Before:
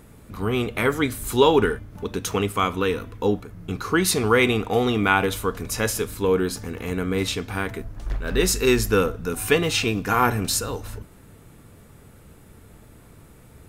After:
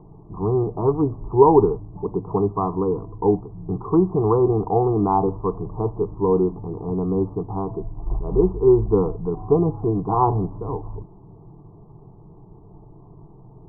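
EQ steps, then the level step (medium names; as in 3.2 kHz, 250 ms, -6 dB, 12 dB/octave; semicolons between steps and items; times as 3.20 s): steep low-pass 1.1 kHz 72 dB/octave; distance through air 430 m; static phaser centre 360 Hz, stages 8; +7.0 dB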